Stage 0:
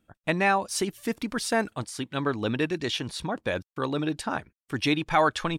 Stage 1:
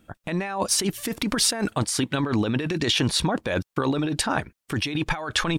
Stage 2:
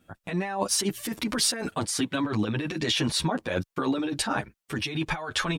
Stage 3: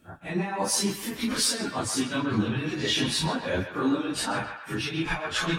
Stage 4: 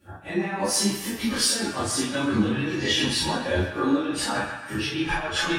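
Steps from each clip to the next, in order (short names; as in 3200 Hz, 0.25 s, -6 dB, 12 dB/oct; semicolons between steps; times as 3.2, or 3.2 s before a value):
negative-ratio compressor -32 dBFS, ratio -1; gain +7.5 dB
low shelf 71 Hz -7.5 dB; endless flanger 8.8 ms +0.57 Hz
phase scrambler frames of 0.1 s; narrowing echo 0.131 s, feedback 61%, band-pass 1700 Hz, level -7 dB; reverse; upward compressor, threshold -34 dBFS; reverse
reverb, pre-delay 3 ms, DRR -8 dB; gain -6 dB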